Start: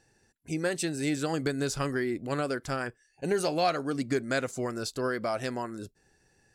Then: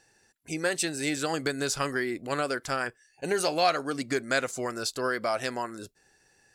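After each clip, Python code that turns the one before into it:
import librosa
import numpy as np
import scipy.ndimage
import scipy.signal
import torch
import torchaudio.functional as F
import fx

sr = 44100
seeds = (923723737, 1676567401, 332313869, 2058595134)

y = fx.low_shelf(x, sr, hz=390.0, db=-11.0)
y = y * librosa.db_to_amplitude(5.0)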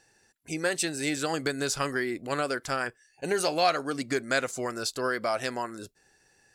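y = x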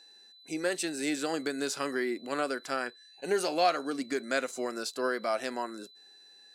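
y = scipy.signal.sosfilt(scipy.signal.butter(4, 210.0, 'highpass', fs=sr, output='sos'), x)
y = fx.hpss(y, sr, part='percussive', gain_db=-6)
y = y + 10.0 ** (-54.0 / 20.0) * np.sin(2.0 * np.pi * 4000.0 * np.arange(len(y)) / sr)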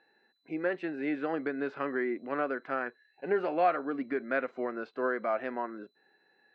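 y = scipy.signal.sosfilt(scipy.signal.butter(4, 2200.0, 'lowpass', fs=sr, output='sos'), x)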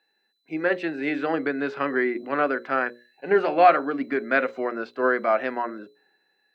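y = fx.high_shelf(x, sr, hz=3400.0, db=9.0)
y = fx.hum_notches(y, sr, base_hz=60, count=10)
y = fx.band_widen(y, sr, depth_pct=40)
y = y * librosa.db_to_amplitude(8.0)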